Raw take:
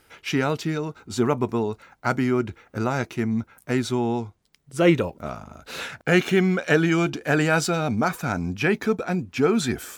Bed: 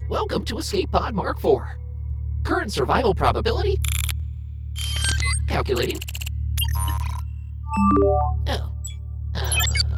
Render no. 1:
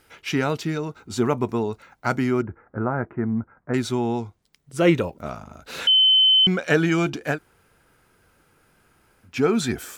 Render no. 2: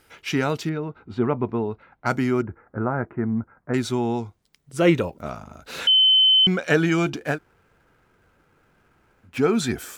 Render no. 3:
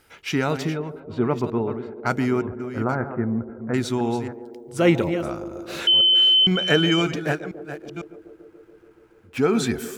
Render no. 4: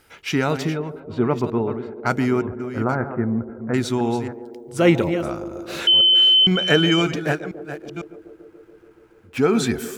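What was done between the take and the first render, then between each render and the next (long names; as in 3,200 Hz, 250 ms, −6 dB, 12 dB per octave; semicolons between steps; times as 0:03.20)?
0:02.42–0:03.74: Butterworth low-pass 1,700 Hz; 0:05.87–0:06.47: beep over 3,060 Hz −12.5 dBFS; 0:07.34–0:09.28: fill with room tone, crossfade 0.10 s
0:00.69–0:02.06: high-frequency loss of the air 410 metres; 0:07.16–0:09.38: running median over 9 samples
delay that plays each chunk backwards 501 ms, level −10.5 dB; feedback echo with a band-pass in the loop 142 ms, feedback 83%, band-pass 410 Hz, level −13 dB
level +2 dB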